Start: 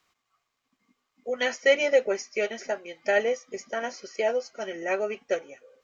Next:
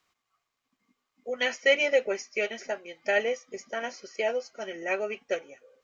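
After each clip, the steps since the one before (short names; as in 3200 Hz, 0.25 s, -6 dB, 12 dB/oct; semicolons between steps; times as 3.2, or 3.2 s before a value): dynamic EQ 2600 Hz, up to +6 dB, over -44 dBFS, Q 1.7; gain -3 dB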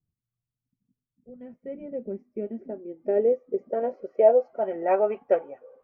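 low-pass sweep 130 Hz -> 870 Hz, 1.08–4.88; gain +5 dB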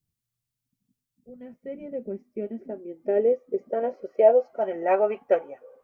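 high shelf 2400 Hz +9.5 dB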